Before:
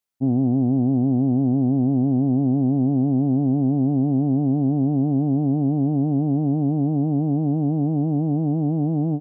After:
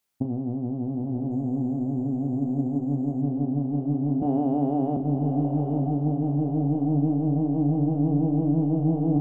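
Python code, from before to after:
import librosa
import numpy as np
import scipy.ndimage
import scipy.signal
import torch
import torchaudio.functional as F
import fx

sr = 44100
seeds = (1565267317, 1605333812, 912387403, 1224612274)

y = fx.highpass(x, sr, hz=520.0, slope=12, at=(4.22, 4.97))
y = fx.over_compress(y, sr, threshold_db=-24.0, ratio=-0.5)
y = fx.doubler(y, sr, ms=35.0, db=-8)
y = fx.echo_diffused(y, sr, ms=905, feedback_pct=40, wet_db=-5.0)
y = fx.resample_linear(y, sr, factor=6, at=(1.31, 3.22))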